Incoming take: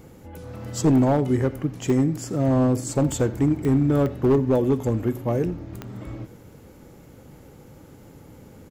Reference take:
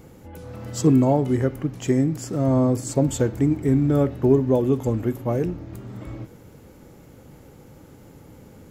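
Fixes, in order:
clipped peaks rebuilt −13 dBFS
click removal
echo removal 86 ms −20.5 dB

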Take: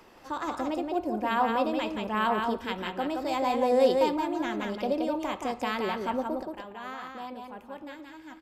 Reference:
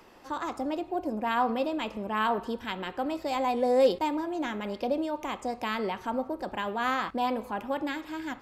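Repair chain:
echo removal 174 ms −4 dB
level 0 dB, from 0:06.43 +11.5 dB

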